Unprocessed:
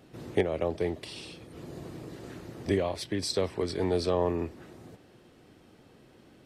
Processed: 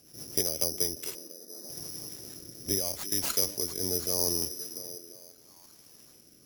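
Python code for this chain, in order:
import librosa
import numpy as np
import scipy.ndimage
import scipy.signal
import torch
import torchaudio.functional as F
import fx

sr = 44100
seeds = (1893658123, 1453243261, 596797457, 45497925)

y = fx.ellip_bandpass(x, sr, low_hz=210.0, high_hz=1800.0, order=3, stop_db=40, at=(1.14, 1.68), fade=0.02)
y = fx.echo_stepped(y, sr, ms=343, hz=270.0, octaves=0.7, feedback_pct=70, wet_db=-11)
y = (np.kron(y[::8], np.eye(8)[0]) * 8)[:len(y)]
y = fx.rotary_switch(y, sr, hz=8.0, then_hz=0.75, switch_at_s=0.37)
y = y * librosa.db_to_amplitude(-6.5)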